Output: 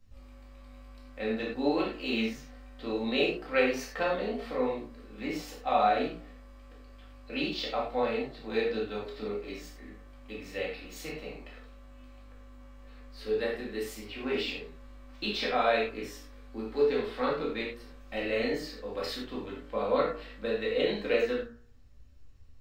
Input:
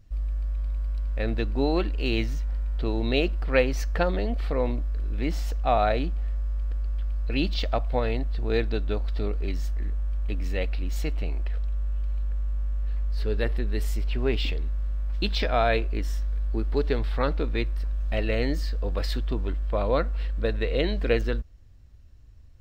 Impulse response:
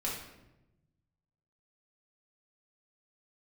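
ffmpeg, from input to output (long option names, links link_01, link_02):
-filter_complex "[0:a]lowshelf=frequency=210:gain=-7.5,bandreject=frequency=59.35:width_type=h:width=4,bandreject=frequency=118.7:width_type=h:width=4,bandreject=frequency=178.05:width_type=h:width=4,bandreject=frequency=237.4:width_type=h:width=4,bandreject=frequency=296.75:width_type=h:width=4,bandreject=frequency=356.1:width_type=h:width=4,bandreject=frequency=415.45:width_type=h:width=4,bandreject=frequency=474.8:width_type=h:width=4,bandreject=frequency=534.15:width_type=h:width=4,bandreject=frequency=593.5:width_type=h:width=4,bandreject=frequency=652.85:width_type=h:width=4,bandreject=frequency=712.2:width_type=h:width=4,bandreject=frequency=771.55:width_type=h:width=4,bandreject=frequency=830.9:width_type=h:width=4,bandreject=frequency=890.25:width_type=h:width=4,bandreject=frequency=949.6:width_type=h:width=4,bandreject=frequency=1008.95:width_type=h:width=4,bandreject=frequency=1068.3:width_type=h:width=4,bandreject=frequency=1127.65:width_type=h:width=4,bandreject=frequency=1187:width_type=h:width=4,bandreject=frequency=1246.35:width_type=h:width=4,bandreject=frequency=1305.7:width_type=h:width=4,bandreject=frequency=1365.05:width_type=h:width=4,bandreject=frequency=1424.4:width_type=h:width=4,bandreject=frequency=1483.75:width_type=h:width=4,bandreject=frequency=1543.1:width_type=h:width=4,bandreject=frequency=1602.45:width_type=h:width=4,bandreject=frequency=1661.8:width_type=h:width=4,bandreject=frequency=1721.15:width_type=h:width=4,bandreject=frequency=1780.5:width_type=h:width=4,bandreject=frequency=1839.85:width_type=h:width=4,acrossover=split=170|790[link_01][link_02][link_03];[link_01]acompressor=threshold=-44dB:ratio=6[link_04];[link_04][link_02][link_03]amix=inputs=3:normalize=0,flanger=delay=9.5:depth=7.9:regen=62:speed=0.57:shape=triangular[link_05];[1:a]atrim=start_sample=2205,afade=type=out:start_time=0.16:duration=0.01,atrim=end_sample=7497[link_06];[link_05][link_06]afir=irnorm=-1:irlink=0"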